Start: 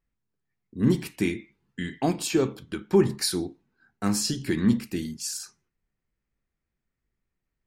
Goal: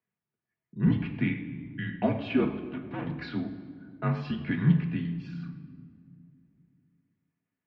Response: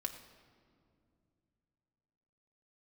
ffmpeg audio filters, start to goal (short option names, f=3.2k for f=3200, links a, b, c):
-filter_complex "[0:a]asettb=1/sr,asplit=3[a][b][c];[a]atrim=end=2.564[d];[b]atrim=start=2.56:end=3.07,asetpts=PTS-STARTPTS,afade=t=in:d=0.004:c=qsin,afade=t=out:st=0.506:d=0.004:c=qsin,aeval=exprs='(tanh(31.6*val(0)+0.7)-tanh(0.7))/31.6':c=same[e];[c]atrim=start=3.066[f];[d][e]acrossfade=d=0.004:c1=hsin:c2=qsin[g];[g][f]acrossfade=d=0.004:c1=qsin:c2=hsin[h];[1:a]atrim=start_sample=2205[i];[h][i]afir=irnorm=-1:irlink=0,highpass=f=190:t=q:w=0.5412,highpass=f=190:t=q:w=1.307,lowpass=f=3.1k:t=q:w=0.5176,lowpass=f=3.1k:t=q:w=0.7071,lowpass=f=3.1k:t=q:w=1.932,afreqshift=-65"